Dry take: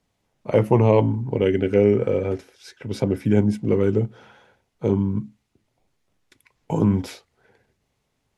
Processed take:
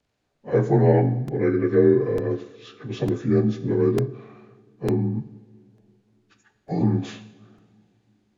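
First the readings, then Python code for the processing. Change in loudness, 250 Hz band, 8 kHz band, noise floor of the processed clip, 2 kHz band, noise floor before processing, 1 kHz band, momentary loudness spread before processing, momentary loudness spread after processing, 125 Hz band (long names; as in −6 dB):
−1.0 dB, −1.0 dB, can't be measured, −72 dBFS, −1.5 dB, −74 dBFS, −2.5 dB, 13 LU, 14 LU, −0.5 dB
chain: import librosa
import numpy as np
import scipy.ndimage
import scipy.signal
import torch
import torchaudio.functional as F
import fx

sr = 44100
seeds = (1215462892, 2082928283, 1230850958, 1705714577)

y = fx.partial_stretch(x, sr, pct=87)
y = fx.rev_double_slope(y, sr, seeds[0], early_s=0.77, late_s=3.4, knee_db=-20, drr_db=9.5)
y = fx.buffer_crackle(y, sr, first_s=0.38, period_s=0.9, block=128, kind='repeat')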